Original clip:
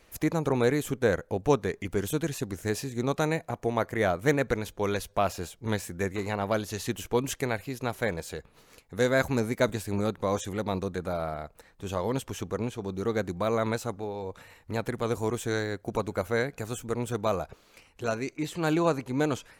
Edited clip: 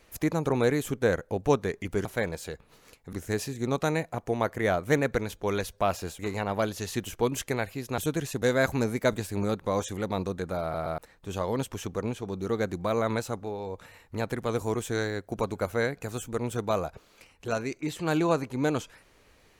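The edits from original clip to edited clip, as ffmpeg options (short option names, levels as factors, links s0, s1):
-filter_complex "[0:a]asplit=9[s0][s1][s2][s3][s4][s5][s6][s7][s8];[s0]atrim=end=2.052[s9];[s1]atrim=start=7.898:end=8.982[s10];[s2]atrim=start=2.488:end=5.552[s11];[s3]atrim=start=6.108:end=7.902[s12];[s4]atrim=start=2.048:end=2.492[s13];[s5]atrim=start=8.978:end=11.302[s14];[s6]atrim=start=11.178:end=11.302[s15];[s7]atrim=start=11.178:end=11.302[s16];[s8]atrim=start=11.538[s17];[s9][s10]acrossfade=d=0.004:c1=hsin:c2=hsin[s18];[s18][s11]acrossfade=d=0.004:c1=hsin:c2=hsin[s19];[s19][s12]acrossfade=d=0.004:c1=hsin:c2=hsin[s20];[s20][s13]acrossfade=d=0.004:c1=hsin:c2=hsin[s21];[s21][s14]acrossfade=d=0.004:c1=hsin:c2=hsin[s22];[s22][s15]acrossfade=d=0.004:c1=hsin:c2=hsin[s23];[s23][s16]acrossfade=d=0.004:c1=hsin:c2=hsin[s24];[s24][s17]acrossfade=d=0.004:c1=hsin:c2=hsin"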